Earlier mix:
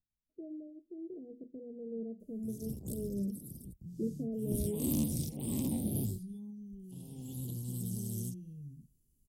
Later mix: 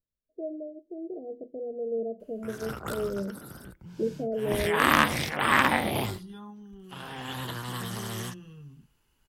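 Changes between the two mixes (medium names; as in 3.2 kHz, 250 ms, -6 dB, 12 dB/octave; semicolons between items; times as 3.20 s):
background: send on; master: remove Chebyshev band-stop 230–8700 Hz, order 2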